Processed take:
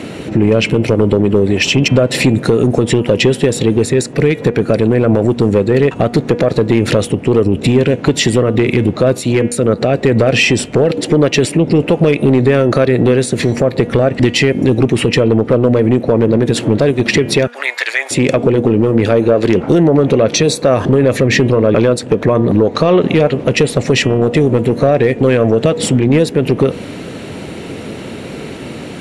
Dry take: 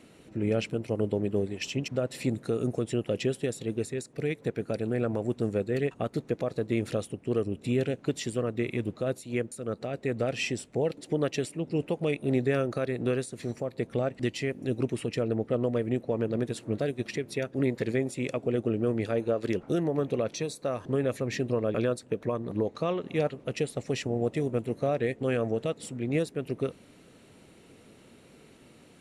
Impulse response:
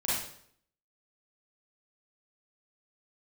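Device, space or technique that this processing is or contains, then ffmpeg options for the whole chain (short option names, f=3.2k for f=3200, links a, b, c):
mastering chain: -filter_complex "[0:a]highshelf=f=6.8k:g=-12,asettb=1/sr,asplit=3[a][b][c];[a]atrim=end=17.474[d];[b]atrim=start=17.47:end=18.11,asetpts=PTS-STARTPTS,afade=t=in:d=0.004:c=qsin,afade=t=out:st=0.636:d=0.004:c=qsin,highpass=f=980:w=0.5412,highpass=f=980:w=1.3066[e];[c]atrim=start=18.106[f];[d][e]acrossfade=d=0.004:c1=hsin:c2=qsin[g];[g][f]acrossfade=d=0.004:c1=qsin:c2=hsin,highpass=50,equalizer=f=1.2k:t=o:w=0.4:g=-2.5,acompressor=threshold=-30dB:ratio=2.5,asoftclip=type=tanh:threshold=-22.5dB,asoftclip=type=hard:threshold=-25.5dB,alimiter=level_in=31dB:limit=-1dB:release=50:level=0:latency=1,bandreject=f=240.1:t=h:w=4,bandreject=f=480.2:t=h:w=4,bandreject=f=720.3:t=h:w=4,bandreject=f=960.4:t=h:w=4,bandreject=f=1.2005k:t=h:w=4,bandreject=f=1.4406k:t=h:w=4,bandreject=f=1.6807k:t=h:w=4,bandreject=f=1.9208k:t=h:w=4,bandreject=f=2.1609k:t=h:w=4,bandreject=f=2.401k:t=h:w=4,bandreject=f=2.6411k:t=h:w=4,bandreject=f=2.8812k:t=h:w=4,bandreject=f=3.1213k:t=h:w=4,bandreject=f=3.3614k:t=h:w=4,volume=-2dB"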